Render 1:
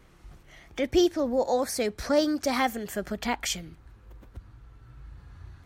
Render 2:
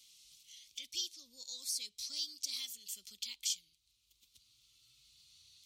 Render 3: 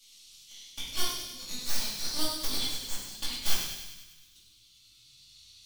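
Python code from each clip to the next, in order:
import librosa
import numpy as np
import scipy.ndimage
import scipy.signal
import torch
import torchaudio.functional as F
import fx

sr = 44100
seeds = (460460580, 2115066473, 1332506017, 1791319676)

y1 = scipy.signal.sosfilt(scipy.signal.cheby2(4, 40, 1800.0, 'highpass', fs=sr, output='sos'), x)
y1 = fx.high_shelf(y1, sr, hz=9000.0, db=-9.0)
y1 = fx.band_squash(y1, sr, depth_pct=40)
y1 = F.gain(torch.from_numpy(y1), 1.5).numpy()
y2 = fx.tracing_dist(y1, sr, depth_ms=0.12)
y2 = fx.echo_wet_highpass(y2, sr, ms=99, feedback_pct=62, hz=2100.0, wet_db=-6.0)
y2 = fx.room_shoebox(y2, sr, seeds[0], volume_m3=250.0, walls='mixed', distance_m=2.4)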